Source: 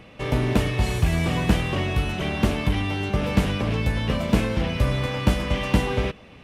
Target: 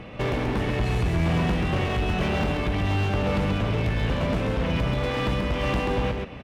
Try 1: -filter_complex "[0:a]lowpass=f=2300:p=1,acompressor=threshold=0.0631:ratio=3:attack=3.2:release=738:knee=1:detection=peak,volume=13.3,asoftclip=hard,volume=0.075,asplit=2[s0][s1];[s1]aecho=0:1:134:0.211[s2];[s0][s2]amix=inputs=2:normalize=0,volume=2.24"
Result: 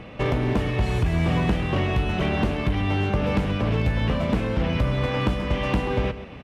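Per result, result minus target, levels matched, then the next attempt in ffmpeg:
echo-to-direct -9.5 dB; overload inside the chain: distortion -9 dB
-filter_complex "[0:a]lowpass=f=2300:p=1,acompressor=threshold=0.0631:ratio=3:attack=3.2:release=738:knee=1:detection=peak,volume=13.3,asoftclip=hard,volume=0.075,asplit=2[s0][s1];[s1]aecho=0:1:134:0.631[s2];[s0][s2]amix=inputs=2:normalize=0,volume=2.24"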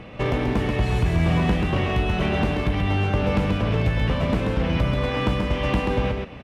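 overload inside the chain: distortion -9 dB
-filter_complex "[0:a]lowpass=f=2300:p=1,acompressor=threshold=0.0631:ratio=3:attack=3.2:release=738:knee=1:detection=peak,volume=28.2,asoftclip=hard,volume=0.0355,asplit=2[s0][s1];[s1]aecho=0:1:134:0.631[s2];[s0][s2]amix=inputs=2:normalize=0,volume=2.24"

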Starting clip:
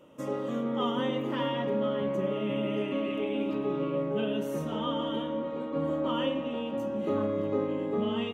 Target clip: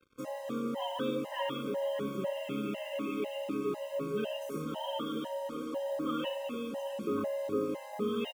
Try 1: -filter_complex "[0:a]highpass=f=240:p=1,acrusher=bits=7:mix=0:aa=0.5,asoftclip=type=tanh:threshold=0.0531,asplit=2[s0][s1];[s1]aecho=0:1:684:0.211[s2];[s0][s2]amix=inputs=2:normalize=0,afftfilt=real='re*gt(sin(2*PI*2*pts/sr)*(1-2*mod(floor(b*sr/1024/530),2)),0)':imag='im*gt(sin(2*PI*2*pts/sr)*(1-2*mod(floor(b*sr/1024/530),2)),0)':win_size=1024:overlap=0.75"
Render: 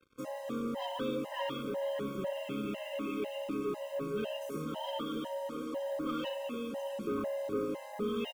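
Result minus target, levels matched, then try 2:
saturation: distortion +19 dB
-filter_complex "[0:a]highpass=f=240:p=1,acrusher=bits=7:mix=0:aa=0.5,asoftclip=type=tanh:threshold=0.2,asplit=2[s0][s1];[s1]aecho=0:1:684:0.211[s2];[s0][s2]amix=inputs=2:normalize=0,afftfilt=real='re*gt(sin(2*PI*2*pts/sr)*(1-2*mod(floor(b*sr/1024/530),2)),0)':imag='im*gt(sin(2*PI*2*pts/sr)*(1-2*mod(floor(b*sr/1024/530),2)),0)':win_size=1024:overlap=0.75"

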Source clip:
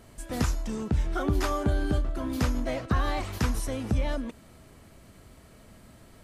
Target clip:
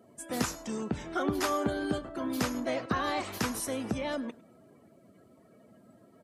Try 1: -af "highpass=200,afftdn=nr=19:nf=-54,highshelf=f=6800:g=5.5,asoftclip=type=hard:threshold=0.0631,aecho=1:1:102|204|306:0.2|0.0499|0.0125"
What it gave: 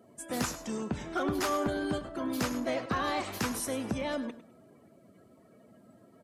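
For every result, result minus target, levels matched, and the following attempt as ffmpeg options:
hard clipper: distortion +19 dB; echo-to-direct +8 dB
-af "highpass=200,afftdn=nr=19:nf=-54,highshelf=f=6800:g=5.5,asoftclip=type=hard:threshold=0.126,aecho=1:1:102|204|306:0.2|0.0499|0.0125"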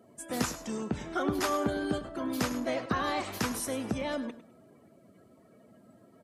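echo-to-direct +8 dB
-af "highpass=200,afftdn=nr=19:nf=-54,highshelf=f=6800:g=5.5,asoftclip=type=hard:threshold=0.126,aecho=1:1:102|204:0.0794|0.0199"

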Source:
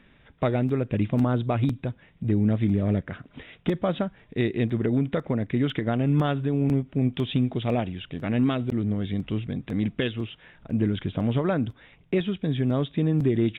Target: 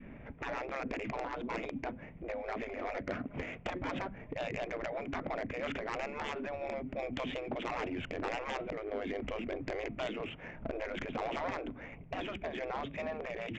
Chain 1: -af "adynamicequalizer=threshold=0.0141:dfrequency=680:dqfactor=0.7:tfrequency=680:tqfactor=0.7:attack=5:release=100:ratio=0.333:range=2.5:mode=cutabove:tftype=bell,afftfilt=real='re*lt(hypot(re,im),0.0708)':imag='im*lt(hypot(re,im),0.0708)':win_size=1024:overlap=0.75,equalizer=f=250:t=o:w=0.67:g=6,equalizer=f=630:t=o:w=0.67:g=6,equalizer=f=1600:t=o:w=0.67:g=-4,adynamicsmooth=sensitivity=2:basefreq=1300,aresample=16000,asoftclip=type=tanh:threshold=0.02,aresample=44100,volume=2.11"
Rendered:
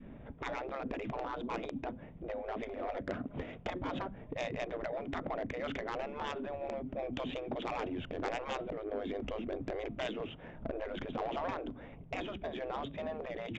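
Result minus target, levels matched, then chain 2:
2 kHz band -3.0 dB
-af "adynamicequalizer=threshold=0.0141:dfrequency=680:dqfactor=0.7:tfrequency=680:tqfactor=0.7:attack=5:release=100:ratio=0.333:range=2.5:mode=cutabove:tftype=bell,lowpass=f=2300:t=q:w=3.1,afftfilt=real='re*lt(hypot(re,im),0.0708)':imag='im*lt(hypot(re,im),0.0708)':win_size=1024:overlap=0.75,equalizer=f=250:t=o:w=0.67:g=6,equalizer=f=630:t=o:w=0.67:g=6,equalizer=f=1600:t=o:w=0.67:g=-4,adynamicsmooth=sensitivity=2:basefreq=1300,aresample=16000,asoftclip=type=tanh:threshold=0.02,aresample=44100,volume=2.11"

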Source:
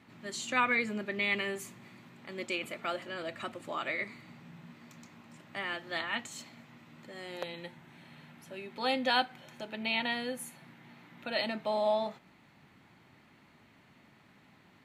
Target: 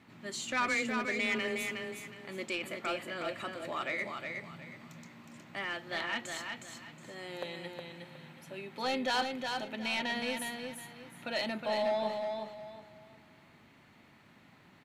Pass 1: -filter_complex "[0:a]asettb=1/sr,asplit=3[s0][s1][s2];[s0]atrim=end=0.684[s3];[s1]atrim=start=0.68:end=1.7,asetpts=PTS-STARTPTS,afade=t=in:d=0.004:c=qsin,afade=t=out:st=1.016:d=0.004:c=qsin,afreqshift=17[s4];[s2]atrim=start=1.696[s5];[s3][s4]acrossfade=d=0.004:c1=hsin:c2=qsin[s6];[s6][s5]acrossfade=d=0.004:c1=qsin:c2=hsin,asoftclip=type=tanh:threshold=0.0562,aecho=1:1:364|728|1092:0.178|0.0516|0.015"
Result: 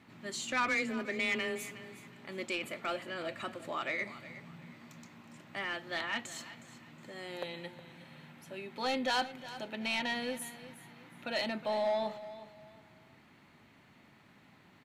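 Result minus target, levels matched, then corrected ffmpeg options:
echo-to-direct -10 dB
-filter_complex "[0:a]asettb=1/sr,asplit=3[s0][s1][s2];[s0]atrim=end=0.684[s3];[s1]atrim=start=0.68:end=1.7,asetpts=PTS-STARTPTS,afade=t=in:d=0.004:c=qsin,afade=t=out:st=1.016:d=0.004:c=qsin,afreqshift=17[s4];[s2]atrim=start=1.696[s5];[s3][s4]acrossfade=d=0.004:c1=hsin:c2=qsin[s6];[s6][s5]acrossfade=d=0.004:c1=qsin:c2=hsin,asoftclip=type=tanh:threshold=0.0562,aecho=1:1:364|728|1092|1456:0.562|0.163|0.0473|0.0137"

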